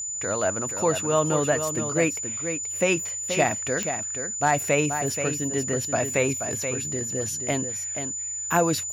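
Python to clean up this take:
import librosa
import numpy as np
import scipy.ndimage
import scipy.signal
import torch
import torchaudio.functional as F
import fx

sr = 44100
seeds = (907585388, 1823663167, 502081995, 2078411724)

y = fx.fix_declip(x, sr, threshold_db=-10.5)
y = fx.fix_declick_ar(y, sr, threshold=10.0)
y = fx.notch(y, sr, hz=7000.0, q=30.0)
y = fx.fix_echo_inverse(y, sr, delay_ms=479, level_db=-8.0)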